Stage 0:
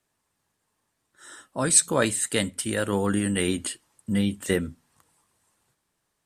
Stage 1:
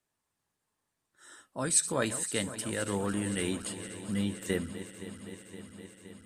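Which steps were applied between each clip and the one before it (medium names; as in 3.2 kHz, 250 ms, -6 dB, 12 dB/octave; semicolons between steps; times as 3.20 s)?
backward echo that repeats 259 ms, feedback 83%, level -13.5 dB; trim -7.5 dB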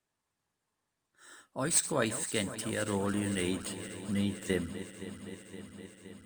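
median filter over 3 samples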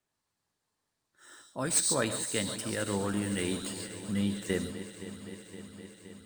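on a send at -12 dB: resonant high shelf 3.2 kHz +8.5 dB, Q 3 + reverberation, pre-delay 3 ms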